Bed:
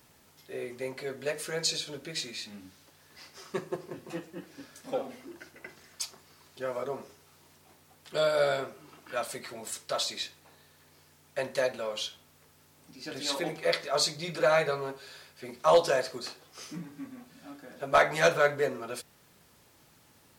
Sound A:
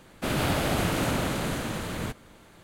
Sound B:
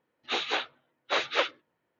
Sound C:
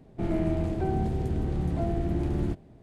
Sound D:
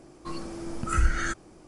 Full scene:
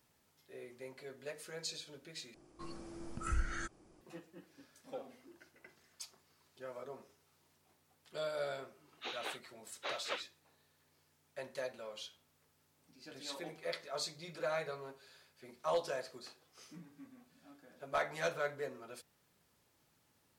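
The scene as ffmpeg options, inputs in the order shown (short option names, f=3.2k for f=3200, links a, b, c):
-filter_complex "[0:a]volume=-13dB,asplit=2[a][b];[a]atrim=end=2.344[c];[4:a]atrim=end=1.67,asetpts=PTS-STARTPTS,volume=-12dB[d];[b]atrim=start=4.006[e];[2:a]atrim=end=1.99,asetpts=PTS-STARTPTS,volume=-14dB,afade=t=in:d=0.004:c=hsin,afade=t=out:st=1.986:d=0.004:c=hsin,adelay=8730[f];[c][d]acrossfade=d=0.004:c1=hsin:c2=hsin[g];[g][e]acrossfade=d=0.004:c1=hsin:c2=hsin[h];[h][f]amix=inputs=2:normalize=0"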